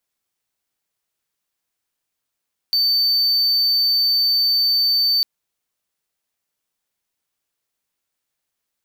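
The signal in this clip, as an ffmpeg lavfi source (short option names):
-f lavfi -i "aevalsrc='0.237*(1-4*abs(mod(4560*t+0.25,1)-0.5))':d=2.5:s=44100"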